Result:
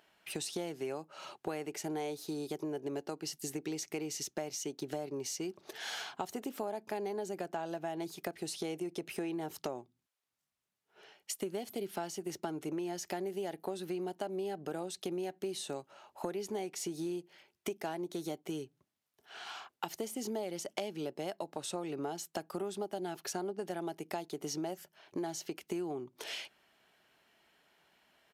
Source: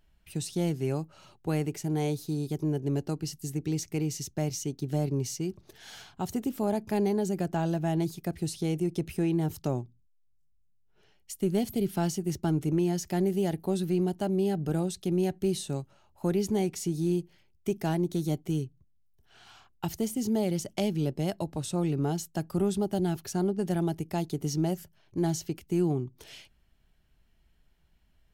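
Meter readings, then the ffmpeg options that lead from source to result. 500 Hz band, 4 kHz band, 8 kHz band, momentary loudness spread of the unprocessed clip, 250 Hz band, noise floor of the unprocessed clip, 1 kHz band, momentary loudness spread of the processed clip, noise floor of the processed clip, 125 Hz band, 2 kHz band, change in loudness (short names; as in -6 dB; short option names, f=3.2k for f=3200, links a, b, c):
-6.5 dB, -1.5 dB, -3.5 dB, 8 LU, -11.5 dB, -65 dBFS, -4.0 dB, 5 LU, under -85 dBFS, -19.5 dB, -1.5 dB, -9.5 dB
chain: -af "highpass=470,highshelf=f=4.1k:g=-7,acompressor=threshold=-47dB:ratio=6,aresample=32000,aresample=44100,volume=11dB"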